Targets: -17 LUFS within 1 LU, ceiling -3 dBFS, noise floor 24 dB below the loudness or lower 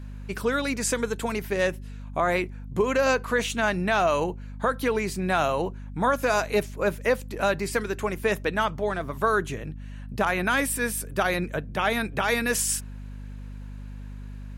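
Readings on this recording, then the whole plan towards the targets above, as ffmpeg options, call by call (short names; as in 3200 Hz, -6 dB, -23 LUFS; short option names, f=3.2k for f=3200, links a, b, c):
hum 50 Hz; harmonics up to 250 Hz; hum level -35 dBFS; loudness -26.0 LUFS; peak -10.5 dBFS; loudness target -17.0 LUFS
-> -af "bandreject=f=50:t=h:w=6,bandreject=f=100:t=h:w=6,bandreject=f=150:t=h:w=6,bandreject=f=200:t=h:w=6,bandreject=f=250:t=h:w=6"
-af "volume=9dB,alimiter=limit=-3dB:level=0:latency=1"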